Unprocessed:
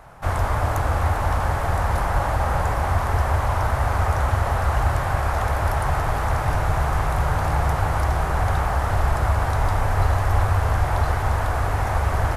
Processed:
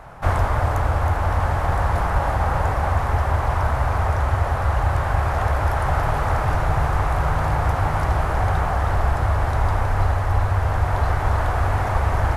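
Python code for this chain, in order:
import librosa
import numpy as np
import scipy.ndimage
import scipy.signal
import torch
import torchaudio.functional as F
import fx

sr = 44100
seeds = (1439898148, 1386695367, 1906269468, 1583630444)

p1 = fx.high_shelf(x, sr, hz=5000.0, db=-7.5)
p2 = p1 + fx.echo_single(p1, sr, ms=319, db=-6.5, dry=0)
y = fx.rider(p2, sr, range_db=10, speed_s=0.5)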